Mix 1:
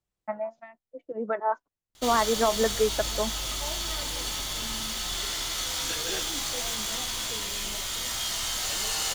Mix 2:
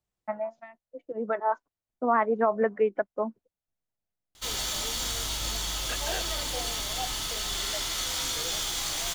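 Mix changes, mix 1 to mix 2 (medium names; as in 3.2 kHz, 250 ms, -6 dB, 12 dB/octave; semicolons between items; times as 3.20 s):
second voice: add resonant high-pass 670 Hz; background: entry +2.40 s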